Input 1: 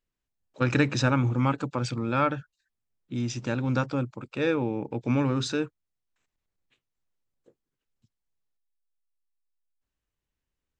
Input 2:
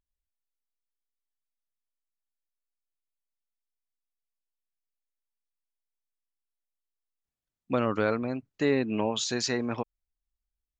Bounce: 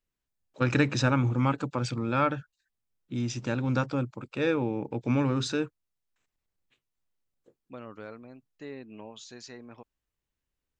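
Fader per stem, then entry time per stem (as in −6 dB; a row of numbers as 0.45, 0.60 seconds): −1.0, −16.5 decibels; 0.00, 0.00 seconds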